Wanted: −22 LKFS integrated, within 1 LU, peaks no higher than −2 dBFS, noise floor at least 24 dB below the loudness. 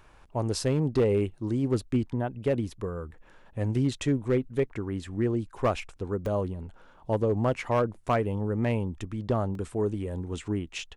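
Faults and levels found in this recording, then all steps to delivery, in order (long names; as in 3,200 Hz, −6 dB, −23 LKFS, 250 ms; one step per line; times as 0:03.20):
share of clipped samples 0.6%; peaks flattened at −17.5 dBFS; number of dropouts 2; longest dropout 2.3 ms; integrated loudness −29.0 LKFS; sample peak −17.5 dBFS; target loudness −22.0 LKFS
→ clipped peaks rebuilt −17.5 dBFS
repair the gap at 0:06.26/0:09.55, 2.3 ms
level +7 dB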